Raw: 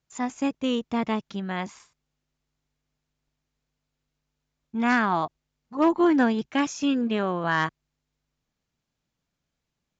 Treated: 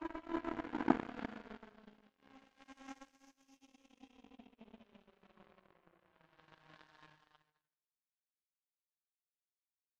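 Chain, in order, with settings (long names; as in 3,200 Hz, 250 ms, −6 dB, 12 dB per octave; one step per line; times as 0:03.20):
source passing by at 0:02.65, 15 m/s, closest 3.7 metres
extreme stretch with random phases 4.1×, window 0.50 s, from 0:05.98
power curve on the samples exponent 3
level +17 dB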